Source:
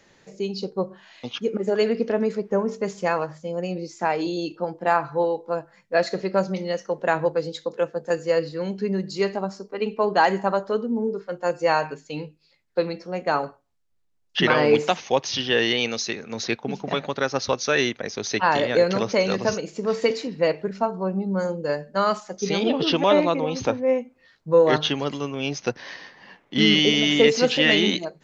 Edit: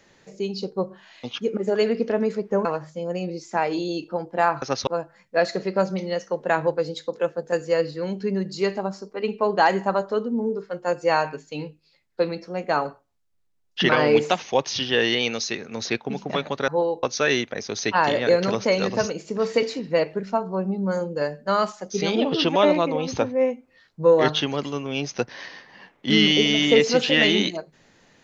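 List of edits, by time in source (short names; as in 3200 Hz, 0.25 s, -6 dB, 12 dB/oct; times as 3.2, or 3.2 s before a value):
2.65–3.13 cut
5.1–5.45 swap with 17.26–17.51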